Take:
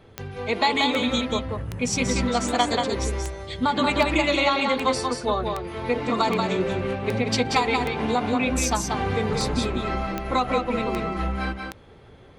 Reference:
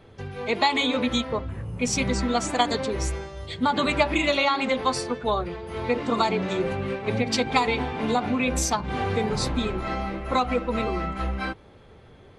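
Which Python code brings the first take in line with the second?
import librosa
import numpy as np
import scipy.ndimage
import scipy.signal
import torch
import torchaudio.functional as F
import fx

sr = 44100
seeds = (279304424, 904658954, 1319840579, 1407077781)

y = fx.fix_declip(x, sr, threshold_db=-9.5)
y = fx.fix_declick_ar(y, sr, threshold=10.0)
y = fx.fix_echo_inverse(y, sr, delay_ms=184, level_db=-4.5)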